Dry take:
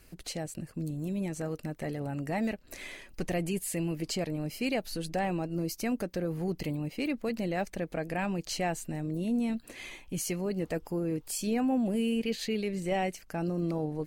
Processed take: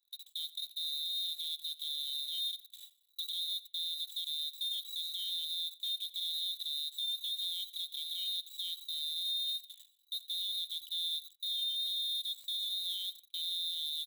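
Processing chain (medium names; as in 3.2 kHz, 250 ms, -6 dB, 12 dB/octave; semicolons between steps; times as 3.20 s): frequency inversion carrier 3.9 kHz; inverse Chebyshev band-stop 300–1600 Hz, stop band 60 dB; in parallel at -5 dB: companded quantiser 4-bit; on the sum: differentiator; comb 1.7 ms, depth 52%; peak limiter -37 dBFS, peak gain reduction 9 dB; on a send: feedback delay 84 ms, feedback 30%, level -19 dB; on the sum: gate with hold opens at -45 dBFS; Bessel high-pass 190 Hz; small resonant body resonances 250/840 Hz, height 10 dB, ringing for 30 ms; trim +7.5 dB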